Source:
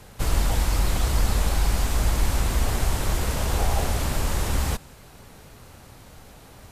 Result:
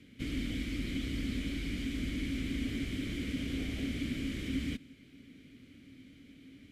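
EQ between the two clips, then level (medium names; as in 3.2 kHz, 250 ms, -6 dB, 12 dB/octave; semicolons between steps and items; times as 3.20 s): vowel filter i; bass shelf 170 Hz +11 dB; treble shelf 10 kHz +8.5 dB; +3.5 dB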